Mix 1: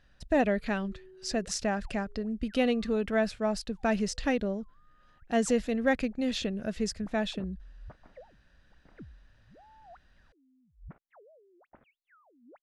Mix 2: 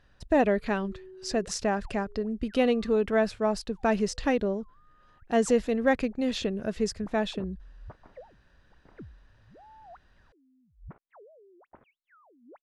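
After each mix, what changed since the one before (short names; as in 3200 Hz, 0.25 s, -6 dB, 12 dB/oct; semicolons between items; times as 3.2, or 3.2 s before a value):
master: add fifteen-band EQ 100 Hz +5 dB, 400 Hz +6 dB, 1000 Hz +6 dB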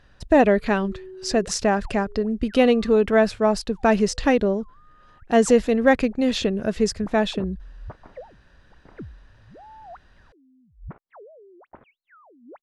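speech +7.0 dB; background +7.5 dB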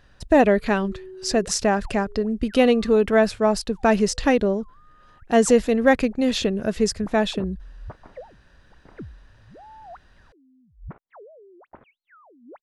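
master: add high shelf 9000 Hz +8 dB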